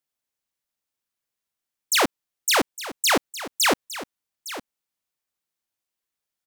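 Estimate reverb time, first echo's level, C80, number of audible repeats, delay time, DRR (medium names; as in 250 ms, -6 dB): no reverb, -14.5 dB, no reverb, 1, 860 ms, no reverb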